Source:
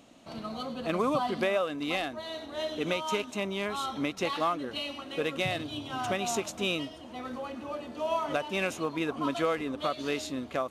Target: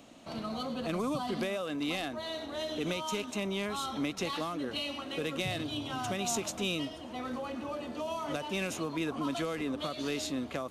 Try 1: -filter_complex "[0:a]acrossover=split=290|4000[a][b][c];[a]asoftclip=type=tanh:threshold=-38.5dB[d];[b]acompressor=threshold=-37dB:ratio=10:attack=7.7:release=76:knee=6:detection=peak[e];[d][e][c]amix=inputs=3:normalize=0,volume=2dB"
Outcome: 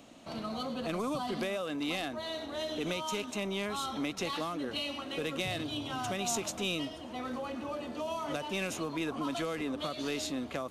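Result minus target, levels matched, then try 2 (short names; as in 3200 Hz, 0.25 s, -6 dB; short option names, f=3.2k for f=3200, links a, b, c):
soft clip: distortion +7 dB
-filter_complex "[0:a]acrossover=split=290|4000[a][b][c];[a]asoftclip=type=tanh:threshold=-32.5dB[d];[b]acompressor=threshold=-37dB:ratio=10:attack=7.7:release=76:knee=6:detection=peak[e];[d][e][c]amix=inputs=3:normalize=0,volume=2dB"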